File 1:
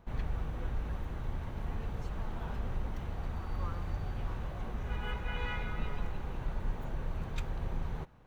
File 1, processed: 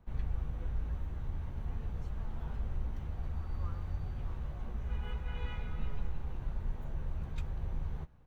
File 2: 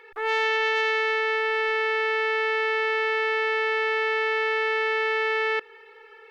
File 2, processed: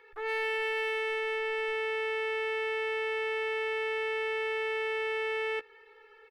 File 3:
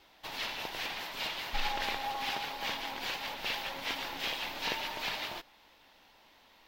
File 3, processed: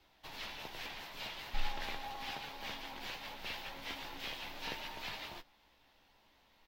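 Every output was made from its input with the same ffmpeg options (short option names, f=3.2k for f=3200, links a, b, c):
-filter_complex "[0:a]lowshelf=f=150:g=10,acrossover=split=110|3300[a][b][c];[c]asoftclip=type=hard:threshold=-36dB[d];[a][b][d]amix=inputs=3:normalize=0,asplit=2[e][f];[f]adelay=14,volume=-9dB[g];[e][g]amix=inputs=2:normalize=0,volume=-8.5dB"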